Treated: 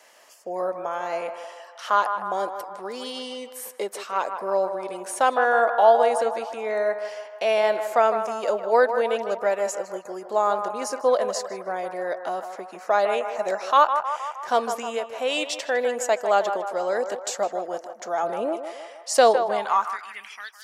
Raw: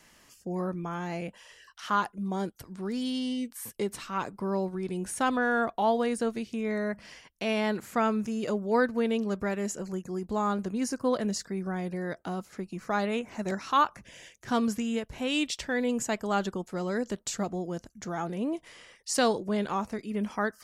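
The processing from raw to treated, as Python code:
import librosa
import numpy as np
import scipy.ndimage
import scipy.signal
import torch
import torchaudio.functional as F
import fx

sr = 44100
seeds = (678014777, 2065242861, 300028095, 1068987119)

y = fx.low_shelf(x, sr, hz=210.0, db=10.5, at=(18.23, 19.88))
y = fx.echo_banded(y, sr, ms=156, feedback_pct=64, hz=960.0, wet_db=-7.0)
y = fx.filter_sweep_highpass(y, sr, from_hz=590.0, to_hz=3500.0, start_s=19.4, end_s=20.56, q=2.8)
y = y * librosa.db_to_amplitude(3.5)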